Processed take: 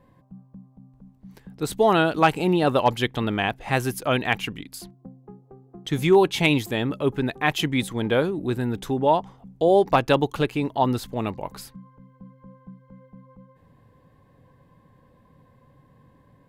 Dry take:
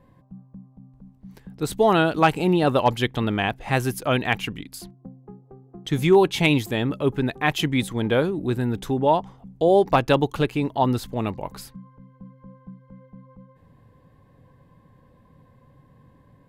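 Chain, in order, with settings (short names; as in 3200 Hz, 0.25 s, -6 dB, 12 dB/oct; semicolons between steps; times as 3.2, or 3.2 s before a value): low shelf 190 Hz -3.5 dB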